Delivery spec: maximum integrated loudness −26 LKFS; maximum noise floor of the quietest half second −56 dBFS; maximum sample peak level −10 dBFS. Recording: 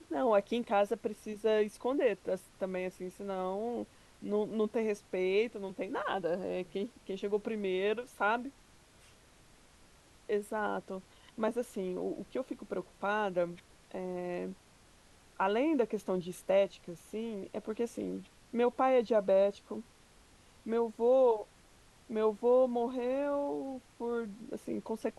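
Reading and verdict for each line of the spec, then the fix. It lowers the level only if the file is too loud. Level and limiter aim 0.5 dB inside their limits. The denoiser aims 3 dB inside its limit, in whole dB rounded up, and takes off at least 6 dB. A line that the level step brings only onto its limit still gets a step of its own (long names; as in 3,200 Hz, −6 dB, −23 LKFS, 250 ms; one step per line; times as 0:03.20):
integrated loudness −33.5 LKFS: in spec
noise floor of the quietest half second −61 dBFS: in spec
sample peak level −16.5 dBFS: in spec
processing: no processing needed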